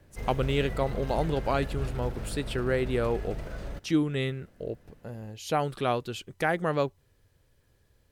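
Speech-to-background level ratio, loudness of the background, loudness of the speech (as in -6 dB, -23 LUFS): 8.0 dB, -38.0 LUFS, -30.0 LUFS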